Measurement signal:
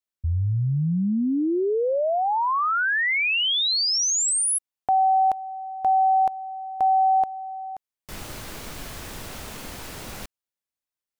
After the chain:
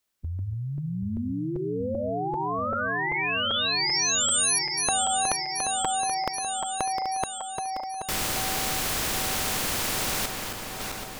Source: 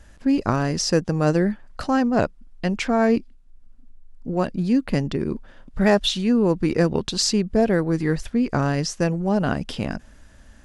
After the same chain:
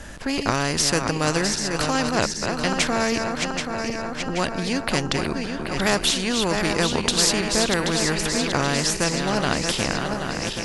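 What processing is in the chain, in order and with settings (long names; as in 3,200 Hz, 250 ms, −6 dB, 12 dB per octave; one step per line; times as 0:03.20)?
feedback delay that plays each chunk backwards 390 ms, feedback 68%, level −9 dB
every bin compressed towards the loudest bin 2 to 1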